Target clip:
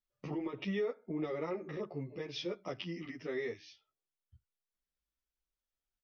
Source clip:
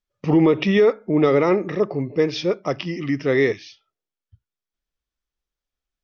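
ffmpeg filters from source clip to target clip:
ffmpeg -i in.wav -filter_complex "[0:a]asettb=1/sr,asplit=3[link_01][link_02][link_03];[link_01]atrim=end=1.764[link_04];[link_02]atrim=start=1.76:end=2.86,asetpts=PTS-STARTPTS,afade=type=in:duration=0.004:curve=qsin,afade=type=out:start_time=1.096:duration=0.004:curve=qsin,equalizer=frequency=3200:width=1.7:gain=5.5[link_05];[link_03]atrim=start=2.856[link_06];[link_04][link_05]acrossfade=duration=0.004:curve1=hsin:curve2=qsin[link_07];[link_07][link_06]acrossfade=duration=0.004:curve1=qsin:curve2=hsin,acompressor=threshold=-36dB:ratio=2,asplit=2[link_08][link_09];[link_09]adelay=11.2,afreqshift=-0.48[link_10];[link_08][link_10]amix=inputs=2:normalize=1,volume=-5dB" out.wav

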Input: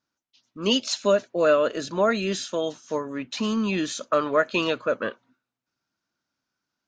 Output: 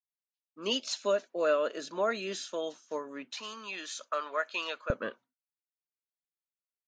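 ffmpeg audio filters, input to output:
ffmpeg -i in.wav -af "agate=range=-33dB:threshold=-40dB:ratio=3:detection=peak,asetnsamples=nb_out_samples=441:pad=0,asendcmd='3.33 highpass f 770;4.9 highpass f 140',highpass=310,volume=-7.5dB" out.wav

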